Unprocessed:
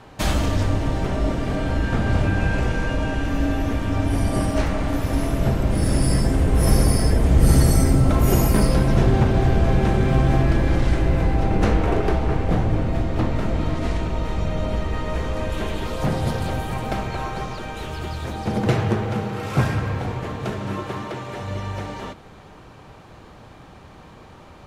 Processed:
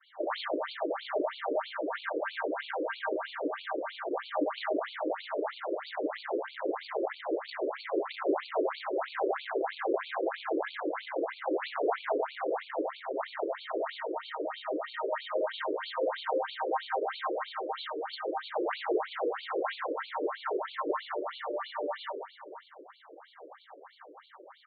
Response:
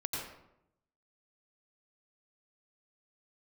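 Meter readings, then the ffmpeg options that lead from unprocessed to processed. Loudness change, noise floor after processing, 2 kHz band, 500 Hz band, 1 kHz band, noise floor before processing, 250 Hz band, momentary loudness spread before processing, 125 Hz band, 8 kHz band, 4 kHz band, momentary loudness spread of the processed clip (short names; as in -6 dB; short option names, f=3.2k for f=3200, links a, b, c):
-12.0 dB, -55 dBFS, -7.0 dB, -5.0 dB, -5.5 dB, -45 dBFS, -15.5 dB, 11 LU, under -40 dB, under -40 dB, -7.5 dB, 6 LU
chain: -filter_complex "[0:a]asuperstop=centerf=2500:order=4:qfactor=3.5,agate=range=-33dB:threshold=-40dB:ratio=3:detection=peak,aresample=11025,asoftclip=type=tanh:threshold=-20dB,aresample=44100,aecho=1:1:481:0.211,asplit=2[a][b];[1:a]atrim=start_sample=2205[c];[b][c]afir=irnorm=-1:irlink=0,volume=-4dB[d];[a][d]amix=inputs=2:normalize=0,afftfilt=real='re*between(b*sr/1024,410*pow(3300/410,0.5+0.5*sin(2*PI*3.1*pts/sr))/1.41,410*pow(3300/410,0.5+0.5*sin(2*PI*3.1*pts/sr))*1.41)':imag='im*between(b*sr/1024,410*pow(3300/410,0.5+0.5*sin(2*PI*3.1*pts/sr))/1.41,410*pow(3300/410,0.5+0.5*sin(2*PI*3.1*pts/sr))*1.41)':win_size=1024:overlap=0.75"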